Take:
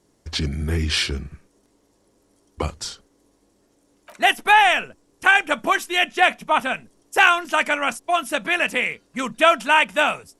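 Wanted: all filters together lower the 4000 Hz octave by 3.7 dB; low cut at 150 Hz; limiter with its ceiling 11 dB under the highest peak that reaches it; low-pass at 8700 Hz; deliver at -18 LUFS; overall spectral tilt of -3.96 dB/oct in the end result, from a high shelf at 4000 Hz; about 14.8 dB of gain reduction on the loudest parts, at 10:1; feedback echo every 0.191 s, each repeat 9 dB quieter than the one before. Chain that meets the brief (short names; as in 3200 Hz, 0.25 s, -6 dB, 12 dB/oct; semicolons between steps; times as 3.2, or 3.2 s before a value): HPF 150 Hz; LPF 8700 Hz; high shelf 4000 Hz -3.5 dB; bell 4000 Hz -3.5 dB; compressor 10:1, threshold -26 dBFS; limiter -22 dBFS; feedback echo 0.191 s, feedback 35%, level -9 dB; gain +15.5 dB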